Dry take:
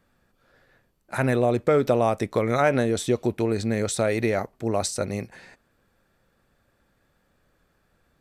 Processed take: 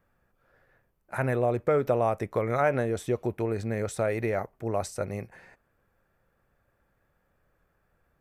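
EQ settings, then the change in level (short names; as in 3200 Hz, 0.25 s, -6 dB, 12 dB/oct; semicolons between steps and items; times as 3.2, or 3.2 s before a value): ten-band EQ 250 Hz -6 dB, 4000 Hz -11 dB, 8000 Hz -7 dB; -2.5 dB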